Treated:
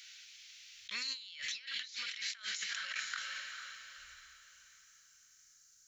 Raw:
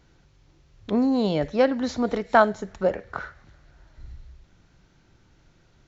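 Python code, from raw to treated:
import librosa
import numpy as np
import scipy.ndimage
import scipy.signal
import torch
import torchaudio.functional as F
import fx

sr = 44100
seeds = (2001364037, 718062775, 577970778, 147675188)

y = fx.cheby2_highpass(x, sr, hz=fx.steps((0.0, 860.0), (3.17, 2700.0)), order=4, stop_db=50)
y = fx.echo_diffused(y, sr, ms=461, feedback_pct=40, wet_db=-13.0)
y = fx.over_compress(y, sr, threshold_db=-54.0, ratio=-1.0)
y = y * 10.0 ** (10.0 / 20.0)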